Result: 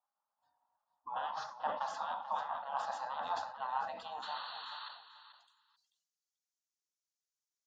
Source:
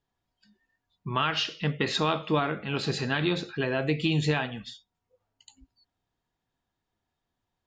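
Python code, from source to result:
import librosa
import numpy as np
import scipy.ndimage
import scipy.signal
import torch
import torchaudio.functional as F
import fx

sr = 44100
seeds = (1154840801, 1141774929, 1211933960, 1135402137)

y = fx.spec_gate(x, sr, threshold_db=-15, keep='weak')
y = fx.filter_sweep_bandpass(y, sr, from_hz=860.0, to_hz=6100.0, start_s=4.64, end_s=5.86, q=3.2)
y = fx.spec_paint(y, sr, seeds[0], shape='noise', start_s=4.22, length_s=0.67, low_hz=850.0, high_hz=4500.0, level_db=-46.0)
y = fx.rider(y, sr, range_db=10, speed_s=0.5)
y = fx.fixed_phaser(y, sr, hz=940.0, stages=4)
y = fx.echo_feedback(y, sr, ms=438, feedback_pct=16, wet_db=-12)
y = fx.sustainer(y, sr, db_per_s=78.0)
y = y * 10.0 ** (9.0 / 20.0)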